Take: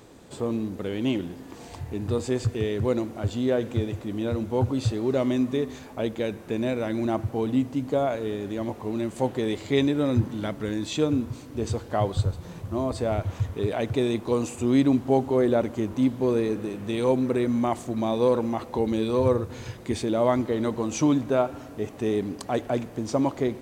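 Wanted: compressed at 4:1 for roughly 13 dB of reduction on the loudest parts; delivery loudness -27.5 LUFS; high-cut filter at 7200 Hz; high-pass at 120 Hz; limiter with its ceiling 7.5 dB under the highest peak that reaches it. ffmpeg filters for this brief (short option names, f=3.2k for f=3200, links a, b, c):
-af "highpass=120,lowpass=7.2k,acompressor=threshold=-33dB:ratio=4,volume=10dB,alimiter=limit=-16.5dB:level=0:latency=1"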